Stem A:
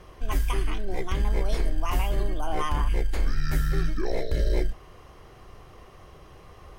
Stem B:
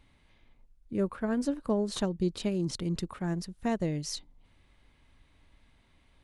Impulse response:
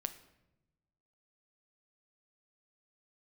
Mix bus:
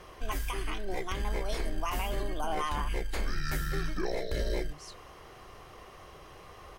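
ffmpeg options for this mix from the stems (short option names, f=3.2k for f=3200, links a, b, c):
-filter_complex "[0:a]lowshelf=f=310:g=-9,volume=2.5dB[a];[1:a]acompressor=threshold=-38dB:ratio=6,adelay=750,volume=-6.5dB[b];[a][b]amix=inputs=2:normalize=0,alimiter=limit=-21.5dB:level=0:latency=1:release=302"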